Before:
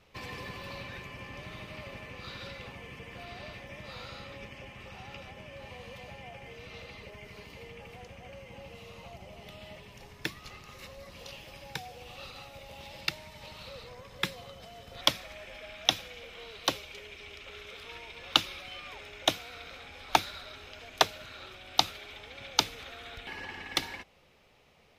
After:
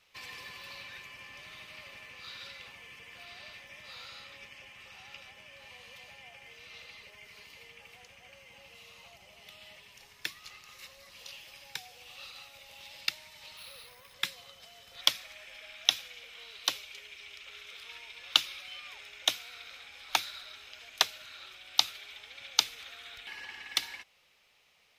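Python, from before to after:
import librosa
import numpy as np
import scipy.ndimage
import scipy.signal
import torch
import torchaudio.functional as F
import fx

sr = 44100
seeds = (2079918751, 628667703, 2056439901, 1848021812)

y = fx.resample_bad(x, sr, factor=3, down='filtered', up='hold', at=(13.57, 14.14))
y = fx.tilt_shelf(y, sr, db=-9.5, hz=930.0)
y = y * librosa.db_to_amplitude(-7.5)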